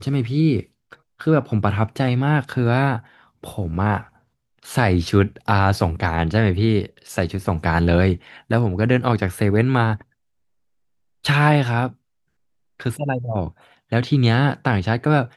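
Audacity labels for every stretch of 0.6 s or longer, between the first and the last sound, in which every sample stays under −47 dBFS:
10.020000	11.240000	silence
11.950000	12.800000	silence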